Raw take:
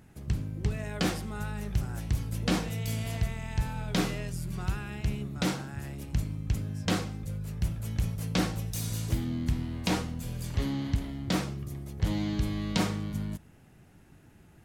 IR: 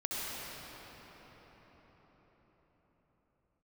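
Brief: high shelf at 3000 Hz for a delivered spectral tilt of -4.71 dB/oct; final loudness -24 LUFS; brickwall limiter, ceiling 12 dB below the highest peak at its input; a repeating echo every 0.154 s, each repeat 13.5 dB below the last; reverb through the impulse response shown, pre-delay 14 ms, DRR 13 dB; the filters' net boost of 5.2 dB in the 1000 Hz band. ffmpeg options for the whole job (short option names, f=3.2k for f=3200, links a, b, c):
-filter_complex "[0:a]equalizer=f=1k:t=o:g=6,highshelf=f=3k:g=7.5,alimiter=limit=-21dB:level=0:latency=1,aecho=1:1:154|308:0.211|0.0444,asplit=2[a][b];[1:a]atrim=start_sample=2205,adelay=14[c];[b][c]afir=irnorm=-1:irlink=0,volume=-19dB[d];[a][d]amix=inputs=2:normalize=0,volume=9dB"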